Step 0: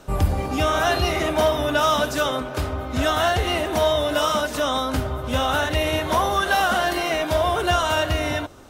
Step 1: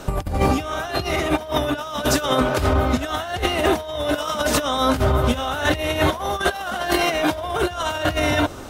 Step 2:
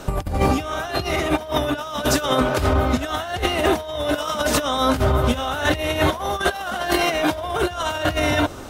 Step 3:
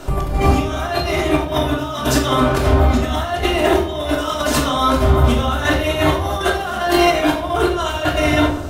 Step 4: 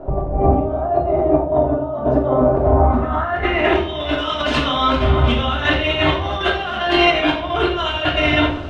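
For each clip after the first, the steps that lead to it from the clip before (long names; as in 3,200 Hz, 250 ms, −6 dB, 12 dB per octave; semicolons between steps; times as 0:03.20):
compressor whose output falls as the input rises −26 dBFS, ratio −0.5; level +5.5 dB
no processing that can be heard
rectangular room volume 920 cubic metres, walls furnished, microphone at 3.1 metres; level −1 dB
low-pass filter sweep 660 Hz → 3,000 Hz, 0:02.61–0:03.87; level −2 dB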